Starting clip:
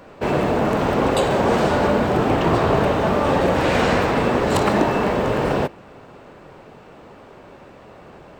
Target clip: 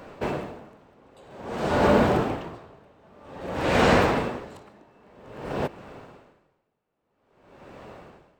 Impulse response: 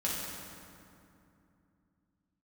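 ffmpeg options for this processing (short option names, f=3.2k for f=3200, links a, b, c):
-af "aeval=exprs='val(0)*pow(10,-37*(0.5-0.5*cos(2*PI*0.51*n/s))/20)':c=same"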